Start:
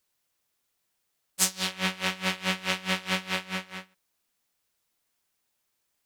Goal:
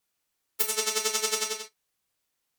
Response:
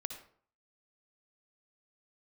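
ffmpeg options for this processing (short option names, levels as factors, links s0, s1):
-filter_complex "[1:a]atrim=start_sample=2205,atrim=end_sample=6174[s0];[0:a][s0]afir=irnorm=-1:irlink=0,asetrate=103194,aresample=44100,volume=1.41"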